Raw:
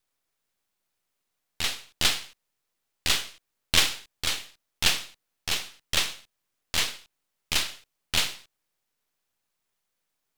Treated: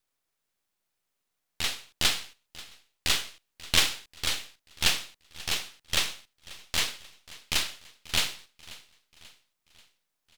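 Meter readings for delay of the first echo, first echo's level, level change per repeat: 537 ms, -20.0 dB, -6.0 dB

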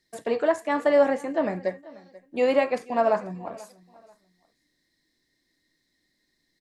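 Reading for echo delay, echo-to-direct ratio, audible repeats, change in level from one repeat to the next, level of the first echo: 487 ms, -20.5 dB, 2, -11.5 dB, -21.0 dB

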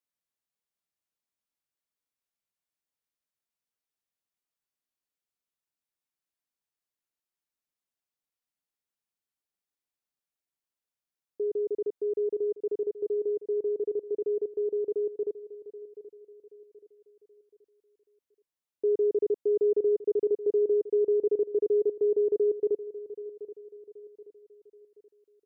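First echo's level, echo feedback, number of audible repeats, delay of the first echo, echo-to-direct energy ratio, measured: -15.5 dB, 40%, 3, 778 ms, -14.5 dB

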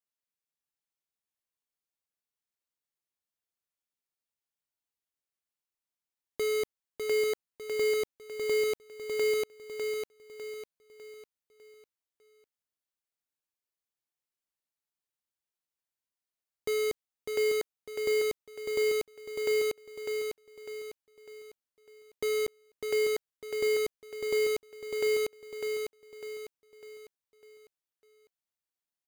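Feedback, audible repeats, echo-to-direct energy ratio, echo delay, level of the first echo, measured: 42%, 4, -4.0 dB, 601 ms, -5.0 dB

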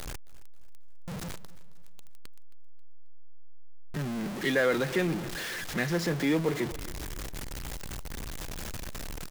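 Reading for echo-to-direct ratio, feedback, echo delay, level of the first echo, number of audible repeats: -18.0 dB, 41%, 269 ms, -19.0 dB, 3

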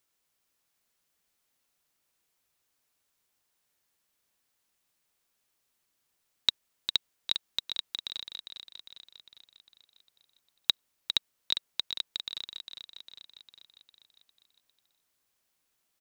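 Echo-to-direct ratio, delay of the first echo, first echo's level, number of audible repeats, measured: -6.5 dB, 403 ms, -8.0 dB, 6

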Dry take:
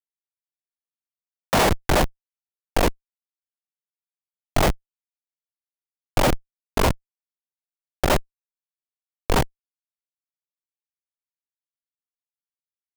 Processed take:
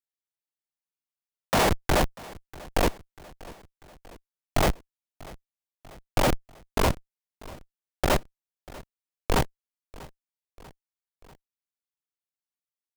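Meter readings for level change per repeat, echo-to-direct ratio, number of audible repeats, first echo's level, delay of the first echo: -4.5 dB, -19.5 dB, 3, -21.0 dB, 642 ms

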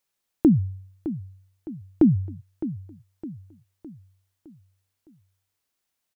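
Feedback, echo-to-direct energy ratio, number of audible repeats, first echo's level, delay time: 47%, -12.0 dB, 4, -13.0 dB, 611 ms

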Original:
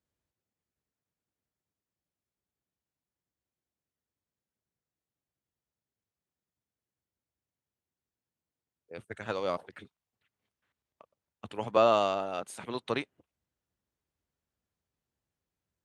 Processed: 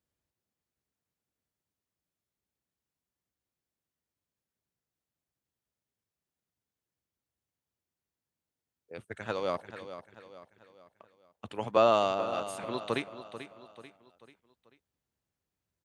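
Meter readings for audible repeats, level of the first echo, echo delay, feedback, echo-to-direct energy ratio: 4, -12.0 dB, 439 ms, 44%, -11.0 dB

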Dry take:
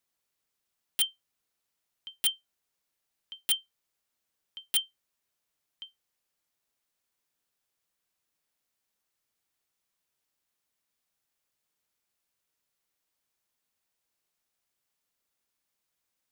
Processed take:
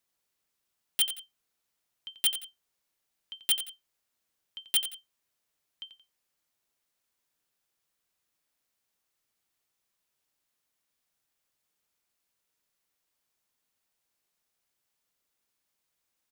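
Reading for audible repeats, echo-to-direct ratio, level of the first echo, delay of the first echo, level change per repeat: 2, -10.5 dB, -11.0 dB, 88 ms, -9.0 dB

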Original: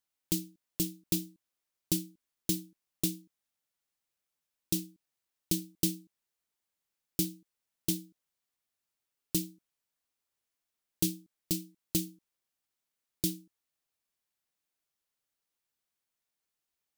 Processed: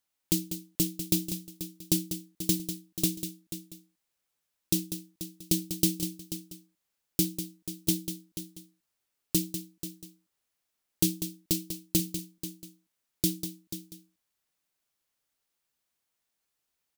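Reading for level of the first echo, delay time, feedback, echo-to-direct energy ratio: -9.5 dB, 195 ms, no regular repeats, -7.5 dB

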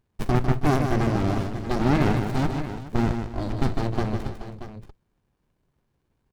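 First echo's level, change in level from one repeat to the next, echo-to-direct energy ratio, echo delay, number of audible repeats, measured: -6.5 dB, no regular repeats, -5.0 dB, 151 ms, 4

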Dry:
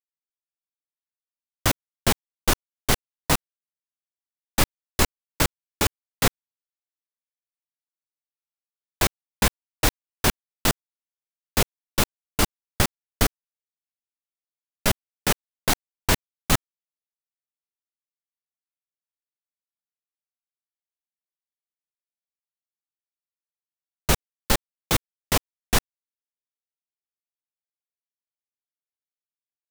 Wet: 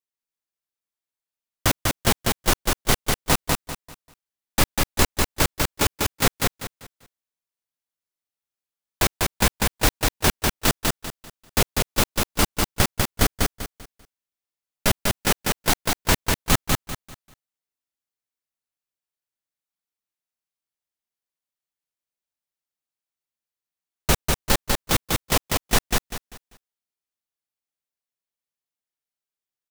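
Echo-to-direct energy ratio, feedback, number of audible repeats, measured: -2.5 dB, 29%, 3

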